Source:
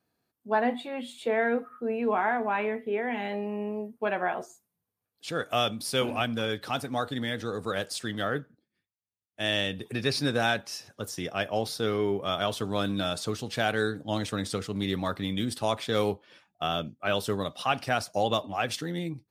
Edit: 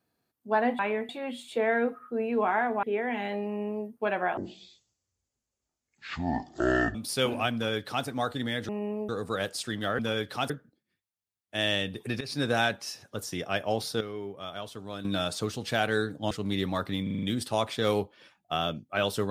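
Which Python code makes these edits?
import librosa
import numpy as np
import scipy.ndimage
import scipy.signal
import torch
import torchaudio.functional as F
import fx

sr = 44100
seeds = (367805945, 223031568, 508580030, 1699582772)

y = fx.edit(x, sr, fx.move(start_s=2.53, length_s=0.3, to_s=0.79),
    fx.duplicate(start_s=3.46, length_s=0.4, to_s=7.45),
    fx.speed_span(start_s=4.37, length_s=1.34, speed=0.52),
    fx.duplicate(start_s=6.31, length_s=0.51, to_s=8.35),
    fx.fade_in_from(start_s=10.06, length_s=0.26, floor_db=-18.0),
    fx.clip_gain(start_s=11.86, length_s=1.04, db=-10.0),
    fx.cut(start_s=14.16, length_s=0.45),
    fx.stutter(start_s=15.33, slice_s=0.04, count=6), tone=tone)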